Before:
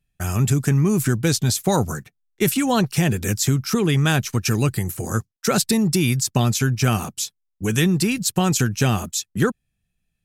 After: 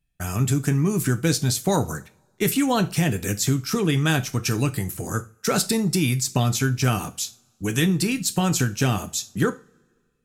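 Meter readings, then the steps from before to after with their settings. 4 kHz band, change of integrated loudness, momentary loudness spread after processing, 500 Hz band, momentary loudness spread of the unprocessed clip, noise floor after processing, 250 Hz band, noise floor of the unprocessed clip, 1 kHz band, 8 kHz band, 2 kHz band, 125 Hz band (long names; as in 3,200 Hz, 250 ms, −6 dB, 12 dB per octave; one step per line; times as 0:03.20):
−2.0 dB, −2.5 dB, 8 LU, −2.0 dB, 8 LU, −67 dBFS, −2.5 dB, −76 dBFS, −2.0 dB, −2.0 dB, −1.5 dB, −3.0 dB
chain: floating-point word with a short mantissa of 8 bits
coupled-rooms reverb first 0.3 s, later 1.7 s, from −27 dB, DRR 9 dB
level −2.5 dB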